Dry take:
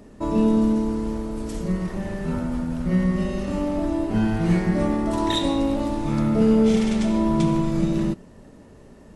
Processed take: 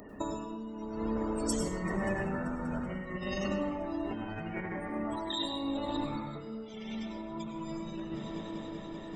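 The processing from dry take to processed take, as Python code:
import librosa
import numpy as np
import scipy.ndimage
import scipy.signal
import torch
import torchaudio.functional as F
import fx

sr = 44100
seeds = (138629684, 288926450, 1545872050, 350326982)

p1 = fx.wow_flutter(x, sr, seeds[0], rate_hz=2.1, depth_cents=19.0)
p2 = fx.spec_topn(p1, sr, count=64)
p3 = fx.high_shelf(p2, sr, hz=3600.0, db=10.5)
p4 = fx.hum_notches(p3, sr, base_hz=60, count=4)
p5 = p4 + fx.echo_heads(p4, sr, ms=193, heads='second and third', feedback_pct=70, wet_db=-23.5, dry=0)
p6 = fx.over_compress(p5, sr, threshold_db=-29.0, ratio=-1.0)
p7 = fx.tilt_eq(p6, sr, slope=2.0)
p8 = fx.rev_plate(p7, sr, seeds[1], rt60_s=0.78, hf_ratio=0.5, predelay_ms=85, drr_db=4.0)
y = F.gain(torch.from_numpy(p8), -5.0).numpy()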